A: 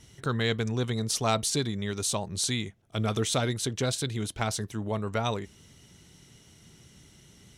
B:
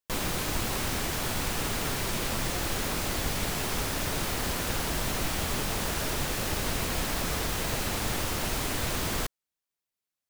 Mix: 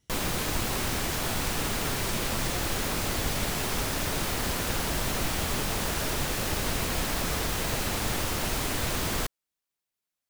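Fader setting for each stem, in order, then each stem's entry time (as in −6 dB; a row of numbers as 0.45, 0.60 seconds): −18.0, +1.0 decibels; 0.00, 0.00 seconds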